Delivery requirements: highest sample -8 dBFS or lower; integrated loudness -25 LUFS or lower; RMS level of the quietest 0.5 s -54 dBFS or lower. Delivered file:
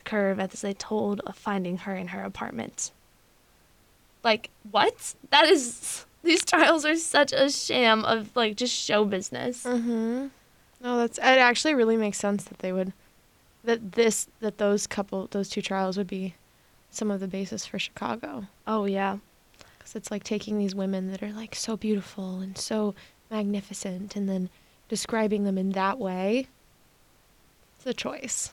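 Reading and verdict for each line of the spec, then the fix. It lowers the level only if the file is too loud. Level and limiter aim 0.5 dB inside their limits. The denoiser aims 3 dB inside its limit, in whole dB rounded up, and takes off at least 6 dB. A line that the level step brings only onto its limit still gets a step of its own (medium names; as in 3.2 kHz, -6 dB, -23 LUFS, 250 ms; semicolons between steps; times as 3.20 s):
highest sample -6.0 dBFS: fail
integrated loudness -26.5 LUFS: pass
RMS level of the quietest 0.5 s -61 dBFS: pass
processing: peak limiter -8.5 dBFS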